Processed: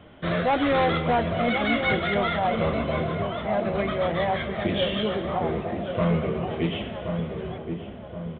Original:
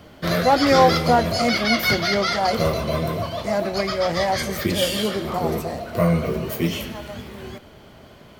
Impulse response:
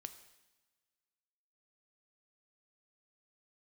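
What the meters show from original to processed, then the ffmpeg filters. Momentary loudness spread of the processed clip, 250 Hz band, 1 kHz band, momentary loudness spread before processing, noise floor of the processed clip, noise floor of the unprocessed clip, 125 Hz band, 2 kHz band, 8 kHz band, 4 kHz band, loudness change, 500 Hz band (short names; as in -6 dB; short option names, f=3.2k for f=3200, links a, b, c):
9 LU, -3.0 dB, -5.0 dB, 13 LU, -39 dBFS, -46 dBFS, -3.0 dB, -3.5 dB, under -40 dB, -8.0 dB, -5.0 dB, -3.5 dB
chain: -filter_complex "[0:a]aresample=8000,asoftclip=type=hard:threshold=-14.5dB,aresample=44100,asplit=2[a][b];[b]adelay=1075,lowpass=f=850:p=1,volume=-5.5dB,asplit=2[c][d];[d]adelay=1075,lowpass=f=850:p=1,volume=0.54,asplit=2[e][f];[f]adelay=1075,lowpass=f=850:p=1,volume=0.54,asplit=2[g][h];[h]adelay=1075,lowpass=f=850:p=1,volume=0.54,asplit=2[i][j];[j]adelay=1075,lowpass=f=850:p=1,volume=0.54,asplit=2[k][l];[l]adelay=1075,lowpass=f=850:p=1,volume=0.54,asplit=2[m][n];[n]adelay=1075,lowpass=f=850:p=1,volume=0.54[o];[a][c][e][g][i][k][m][o]amix=inputs=8:normalize=0,volume=-3.5dB"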